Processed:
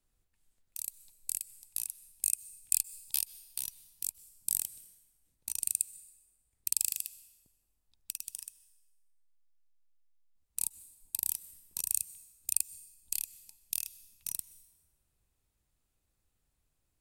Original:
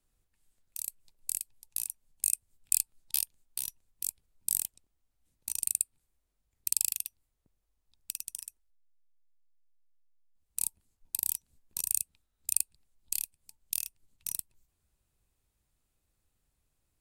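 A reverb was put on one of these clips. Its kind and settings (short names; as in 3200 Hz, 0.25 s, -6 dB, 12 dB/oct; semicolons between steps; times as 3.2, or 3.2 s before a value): plate-style reverb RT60 1.4 s, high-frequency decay 0.75×, pre-delay 0.115 s, DRR 17.5 dB; gain -1.5 dB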